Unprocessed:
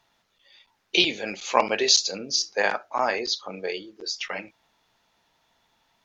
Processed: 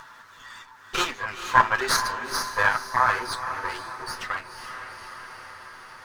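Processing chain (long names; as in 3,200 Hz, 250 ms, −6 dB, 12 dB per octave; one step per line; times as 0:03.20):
lower of the sound and its delayed copy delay 7.9 ms
flat-topped bell 1,300 Hz +14.5 dB 1.2 octaves
on a send: feedback delay with all-pass diffusion 473 ms, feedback 46%, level −10.5 dB
on the sum: upward compression, threshold −25 dBFS
level −5.5 dB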